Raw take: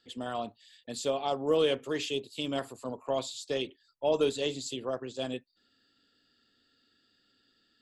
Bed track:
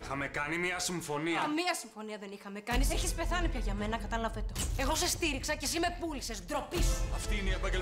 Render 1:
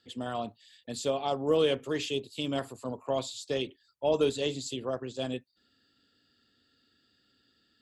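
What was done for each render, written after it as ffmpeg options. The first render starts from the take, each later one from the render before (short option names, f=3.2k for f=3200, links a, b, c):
-af "highpass=45,equalizer=f=68:w=0.46:g=6.5"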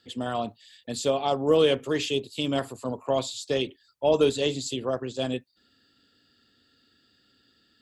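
-af "volume=5dB"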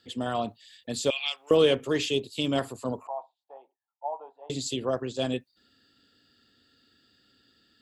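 -filter_complex "[0:a]asettb=1/sr,asplit=3[a][b][c];[a]atrim=end=1.104[d];[b]atrim=start=1.1:end=1.51,asetpts=PTS-STARTPTS,afade=t=in:d=0.004:c=qsin,afade=t=out:st=0.406:d=0.004:c=qsin,highpass=f=2.5k:t=q:w=5.7[e];[c]atrim=start=1.506[f];[d][e]acrossfade=d=0.004:c1=hsin:c2=qsin[g];[g][f]acrossfade=d=0.004:c1=qsin:c2=hsin,asettb=1/sr,asplit=3[h][i][j];[h]atrim=end=3.074[k];[i]atrim=start=3.07:end=4.5,asetpts=PTS-STARTPTS,afade=t=in:d=0.004:c=qsin,afade=t=out:st=1.426:d=0.004:c=qsin,asuperpass=centerf=830:order=4:qfactor=3.6[l];[j]atrim=start=4.496[m];[k][l]acrossfade=d=0.004:c1=hsin:c2=qsin[n];[n][m]acrossfade=d=0.004:c1=qsin:c2=hsin"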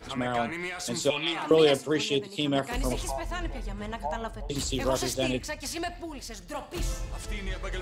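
-filter_complex "[1:a]volume=-1.5dB[a];[0:a][a]amix=inputs=2:normalize=0"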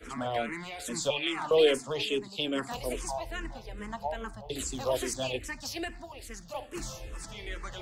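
-filter_complex "[0:a]acrossover=split=320|430|3200[a][b][c][d];[a]asoftclip=type=tanh:threshold=-34.5dB[e];[e][b][c][d]amix=inputs=4:normalize=0,asplit=2[f][g];[g]afreqshift=-2.4[h];[f][h]amix=inputs=2:normalize=1"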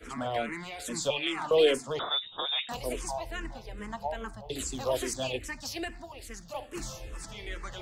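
-filter_complex "[0:a]asettb=1/sr,asplit=3[a][b][c];[a]atrim=end=1.994[d];[b]atrim=start=1.99:end=2.69,asetpts=PTS-STARTPTS,afade=t=in:d=0.004:c=qsin,afade=t=out:st=0.696:d=0.004:c=qsin,lowpass=f=3.3k:t=q:w=0.5098,lowpass=f=3.3k:t=q:w=0.6013,lowpass=f=3.3k:t=q:w=0.9,lowpass=f=3.3k:t=q:w=2.563,afreqshift=-3900[e];[c]atrim=start=2.686[f];[d][e]acrossfade=d=0.004:c1=hsin:c2=qsin[g];[g][f]acrossfade=d=0.004:c1=qsin:c2=hsin"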